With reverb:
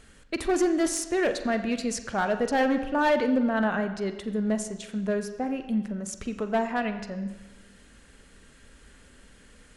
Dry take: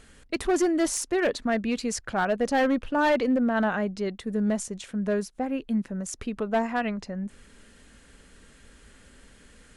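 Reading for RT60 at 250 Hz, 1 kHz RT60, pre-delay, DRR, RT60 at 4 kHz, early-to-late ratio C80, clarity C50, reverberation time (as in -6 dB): 1.1 s, 1.1 s, 40 ms, 8.0 dB, 1.1 s, 11.5 dB, 10.5 dB, 1.1 s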